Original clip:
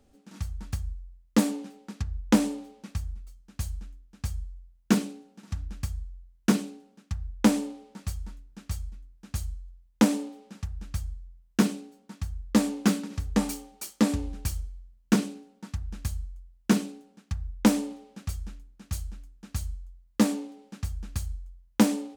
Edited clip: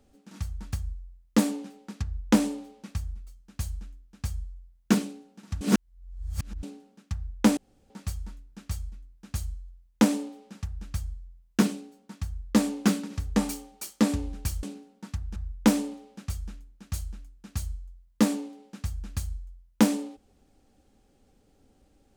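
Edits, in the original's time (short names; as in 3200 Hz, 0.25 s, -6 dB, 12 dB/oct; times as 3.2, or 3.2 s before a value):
5.61–6.63 reverse
7.57–7.9 room tone
14.63–15.23 cut
15.96–17.35 cut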